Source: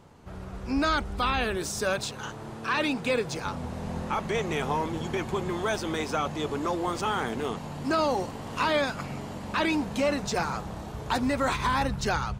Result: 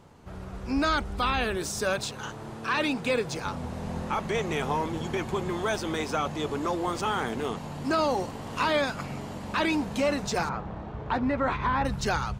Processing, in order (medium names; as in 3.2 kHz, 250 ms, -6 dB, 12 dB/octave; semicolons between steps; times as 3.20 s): 10.49–11.85 s: low-pass 2.2 kHz 12 dB/octave